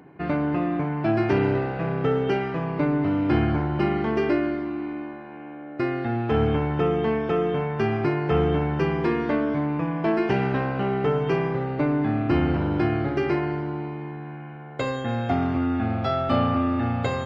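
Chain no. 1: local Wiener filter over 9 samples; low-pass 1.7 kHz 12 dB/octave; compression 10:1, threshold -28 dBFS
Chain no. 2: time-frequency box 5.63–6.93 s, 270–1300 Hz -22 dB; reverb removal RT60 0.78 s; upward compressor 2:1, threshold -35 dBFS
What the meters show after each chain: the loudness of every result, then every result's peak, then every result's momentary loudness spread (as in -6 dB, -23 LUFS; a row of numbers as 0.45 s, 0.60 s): -32.5 LUFS, -27.0 LUFS; -18.0 dBFS, -9.5 dBFS; 3 LU, 11 LU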